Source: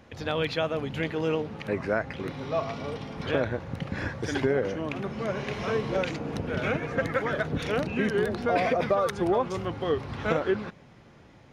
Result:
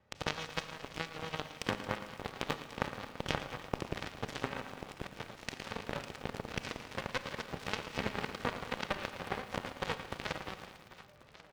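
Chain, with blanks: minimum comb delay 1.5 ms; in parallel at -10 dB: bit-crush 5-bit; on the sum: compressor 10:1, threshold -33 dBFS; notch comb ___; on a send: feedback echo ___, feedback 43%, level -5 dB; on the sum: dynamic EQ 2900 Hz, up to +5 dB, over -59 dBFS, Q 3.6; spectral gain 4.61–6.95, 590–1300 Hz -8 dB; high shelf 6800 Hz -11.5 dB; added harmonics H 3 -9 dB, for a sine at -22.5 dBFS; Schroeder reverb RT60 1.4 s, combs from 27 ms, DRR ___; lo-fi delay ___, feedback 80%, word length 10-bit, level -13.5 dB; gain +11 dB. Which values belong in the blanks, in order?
690 Hz, 1.09 s, 11.5 dB, 0.112 s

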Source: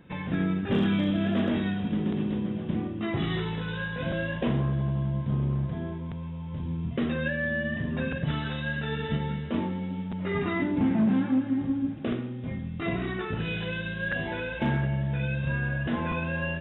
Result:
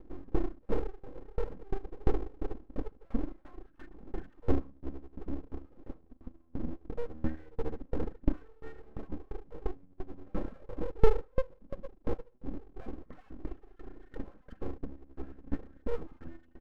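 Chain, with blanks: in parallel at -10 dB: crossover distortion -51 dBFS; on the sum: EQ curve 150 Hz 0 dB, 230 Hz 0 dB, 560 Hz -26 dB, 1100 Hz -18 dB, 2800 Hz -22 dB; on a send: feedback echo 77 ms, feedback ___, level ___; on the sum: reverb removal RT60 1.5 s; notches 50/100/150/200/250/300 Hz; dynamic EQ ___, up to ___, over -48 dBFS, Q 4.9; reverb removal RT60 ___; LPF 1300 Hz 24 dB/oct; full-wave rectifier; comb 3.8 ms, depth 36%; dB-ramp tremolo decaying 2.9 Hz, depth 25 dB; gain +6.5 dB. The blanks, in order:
50%, -4 dB, 300 Hz, -7 dB, 1.4 s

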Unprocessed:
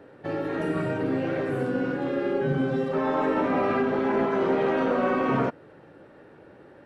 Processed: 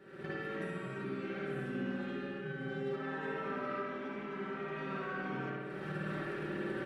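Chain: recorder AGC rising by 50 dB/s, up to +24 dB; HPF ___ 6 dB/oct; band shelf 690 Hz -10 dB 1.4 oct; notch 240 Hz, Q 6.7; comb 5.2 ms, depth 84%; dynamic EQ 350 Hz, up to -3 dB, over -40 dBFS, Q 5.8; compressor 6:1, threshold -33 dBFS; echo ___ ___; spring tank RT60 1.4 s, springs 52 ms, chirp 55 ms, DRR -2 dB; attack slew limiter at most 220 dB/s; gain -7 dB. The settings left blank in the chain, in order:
83 Hz, 72 ms, -6 dB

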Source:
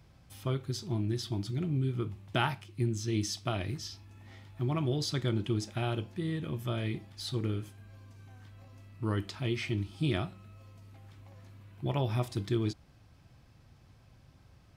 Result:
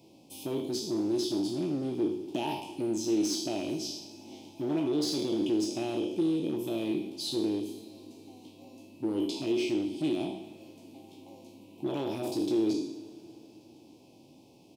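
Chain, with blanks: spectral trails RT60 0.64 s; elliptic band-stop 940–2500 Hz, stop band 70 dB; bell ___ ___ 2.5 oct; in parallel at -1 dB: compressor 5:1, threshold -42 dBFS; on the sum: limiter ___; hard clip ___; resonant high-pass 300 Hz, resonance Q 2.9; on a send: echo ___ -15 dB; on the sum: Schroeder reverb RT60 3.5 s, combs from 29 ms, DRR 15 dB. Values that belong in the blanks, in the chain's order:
1400 Hz, -2.5 dB, -21.5 dBFS, -27 dBFS, 77 ms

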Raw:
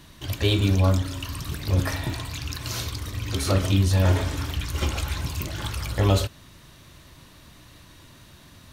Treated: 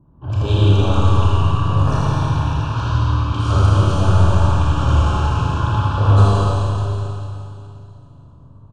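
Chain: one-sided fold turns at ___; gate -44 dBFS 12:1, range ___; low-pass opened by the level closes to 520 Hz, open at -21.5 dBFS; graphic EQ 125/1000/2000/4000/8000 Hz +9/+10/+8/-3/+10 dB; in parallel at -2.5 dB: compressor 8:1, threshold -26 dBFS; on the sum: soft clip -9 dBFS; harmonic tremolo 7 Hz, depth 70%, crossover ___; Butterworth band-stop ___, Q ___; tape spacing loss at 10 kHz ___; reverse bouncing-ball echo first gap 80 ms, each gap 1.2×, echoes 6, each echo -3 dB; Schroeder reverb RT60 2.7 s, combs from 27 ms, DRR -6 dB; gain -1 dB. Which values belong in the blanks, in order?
-13.5 dBFS, -9 dB, 950 Hz, 2000 Hz, 1.7, 22 dB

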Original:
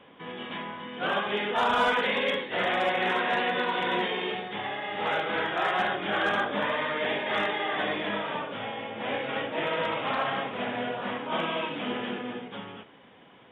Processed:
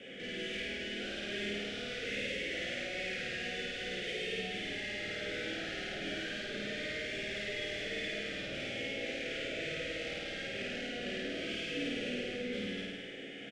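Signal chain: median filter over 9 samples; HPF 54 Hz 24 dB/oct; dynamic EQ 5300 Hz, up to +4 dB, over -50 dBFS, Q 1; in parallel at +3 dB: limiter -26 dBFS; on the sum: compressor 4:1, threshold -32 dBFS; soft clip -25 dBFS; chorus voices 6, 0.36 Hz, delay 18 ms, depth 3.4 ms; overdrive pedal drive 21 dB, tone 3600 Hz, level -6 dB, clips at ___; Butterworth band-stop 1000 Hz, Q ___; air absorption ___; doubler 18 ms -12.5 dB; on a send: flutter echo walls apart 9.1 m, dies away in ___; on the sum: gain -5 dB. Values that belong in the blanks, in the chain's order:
-25 dBFS, 0.64, 65 m, 1.4 s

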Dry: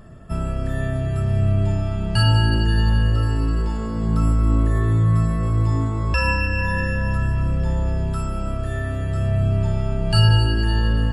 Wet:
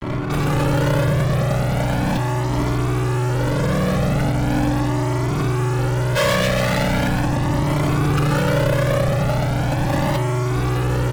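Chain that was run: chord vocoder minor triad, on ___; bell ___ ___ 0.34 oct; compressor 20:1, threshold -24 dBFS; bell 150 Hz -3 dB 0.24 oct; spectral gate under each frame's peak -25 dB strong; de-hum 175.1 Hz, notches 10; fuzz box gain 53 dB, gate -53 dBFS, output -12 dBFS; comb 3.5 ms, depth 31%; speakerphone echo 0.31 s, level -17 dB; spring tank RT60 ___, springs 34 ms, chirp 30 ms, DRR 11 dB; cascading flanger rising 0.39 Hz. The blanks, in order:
B2, 620 Hz, +6 dB, 3.2 s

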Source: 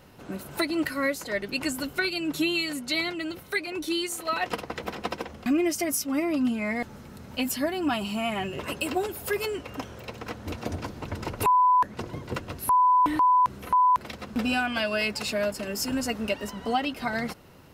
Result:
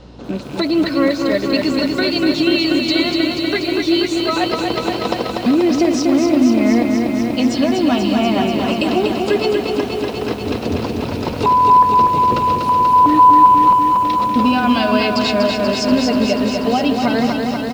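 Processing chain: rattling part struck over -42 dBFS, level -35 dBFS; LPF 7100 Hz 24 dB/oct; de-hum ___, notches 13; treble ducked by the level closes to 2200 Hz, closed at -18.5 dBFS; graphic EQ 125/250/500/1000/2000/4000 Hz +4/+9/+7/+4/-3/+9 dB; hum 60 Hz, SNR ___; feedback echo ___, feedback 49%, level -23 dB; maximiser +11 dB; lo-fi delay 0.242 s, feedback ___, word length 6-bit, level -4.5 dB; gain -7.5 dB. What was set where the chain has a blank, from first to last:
131.7 Hz, 25 dB, 0.17 s, 80%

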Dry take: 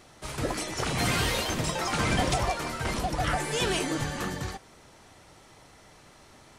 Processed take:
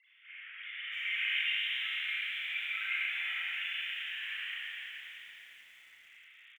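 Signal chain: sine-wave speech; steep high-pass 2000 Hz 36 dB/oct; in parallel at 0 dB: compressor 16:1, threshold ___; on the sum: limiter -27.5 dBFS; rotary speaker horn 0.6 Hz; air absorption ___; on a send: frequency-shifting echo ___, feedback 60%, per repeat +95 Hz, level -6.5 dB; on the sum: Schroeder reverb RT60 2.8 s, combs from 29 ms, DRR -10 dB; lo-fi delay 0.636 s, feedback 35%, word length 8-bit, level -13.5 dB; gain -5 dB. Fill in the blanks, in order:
-48 dBFS, 200 m, 0.119 s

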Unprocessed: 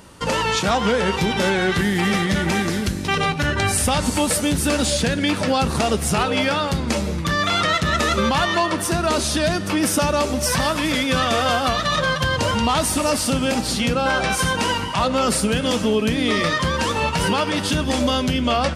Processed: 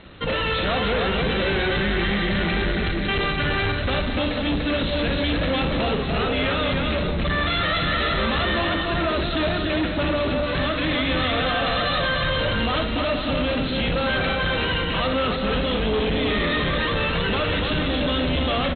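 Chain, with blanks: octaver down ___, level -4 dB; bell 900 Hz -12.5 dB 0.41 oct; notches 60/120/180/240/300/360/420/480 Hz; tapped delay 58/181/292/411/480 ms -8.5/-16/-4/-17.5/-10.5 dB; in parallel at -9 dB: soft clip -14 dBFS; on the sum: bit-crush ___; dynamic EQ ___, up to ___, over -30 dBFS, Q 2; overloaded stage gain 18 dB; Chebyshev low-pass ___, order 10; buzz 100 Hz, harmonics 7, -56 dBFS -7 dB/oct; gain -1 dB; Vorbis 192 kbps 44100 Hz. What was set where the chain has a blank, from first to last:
2 oct, 7-bit, 200 Hz, -3 dB, 4100 Hz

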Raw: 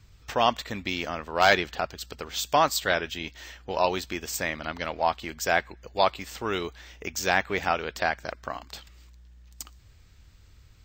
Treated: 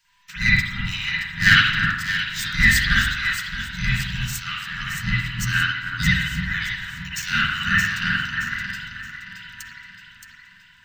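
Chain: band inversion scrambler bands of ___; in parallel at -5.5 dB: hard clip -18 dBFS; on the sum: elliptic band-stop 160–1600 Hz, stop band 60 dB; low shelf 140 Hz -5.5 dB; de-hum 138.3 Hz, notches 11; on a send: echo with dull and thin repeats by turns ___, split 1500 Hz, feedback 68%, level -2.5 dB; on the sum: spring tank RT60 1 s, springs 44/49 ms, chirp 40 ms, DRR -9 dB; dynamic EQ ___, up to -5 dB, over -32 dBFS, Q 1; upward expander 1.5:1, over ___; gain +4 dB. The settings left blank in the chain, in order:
1000 Hz, 0.311 s, 2600 Hz, -33 dBFS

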